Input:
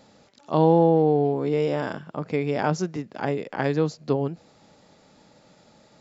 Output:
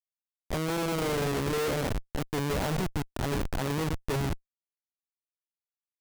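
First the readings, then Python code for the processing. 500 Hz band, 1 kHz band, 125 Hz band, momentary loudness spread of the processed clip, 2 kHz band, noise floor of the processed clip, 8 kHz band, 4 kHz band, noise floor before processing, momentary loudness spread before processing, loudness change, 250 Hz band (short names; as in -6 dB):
-9.5 dB, -8.0 dB, -4.5 dB, 5 LU, -1.0 dB, under -85 dBFS, n/a, +4.5 dB, -57 dBFS, 13 LU, -7.0 dB, -7.5 dB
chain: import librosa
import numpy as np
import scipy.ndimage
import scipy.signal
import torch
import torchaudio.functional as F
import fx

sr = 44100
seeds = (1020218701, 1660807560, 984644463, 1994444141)

y = x + 10.0 ** (-16.0 / 20.0) * np.pad(x, (int(123 * sr / 1000.0), 0))[:len(x)]
y = fx.cheby_harmonics(y, sr, harmonics=(3, 6, 8), levels_db=(-15, -20, -22), full_scale_db=-6.0)
y = fx.schmitt(y, sr, flips_db=-34.5)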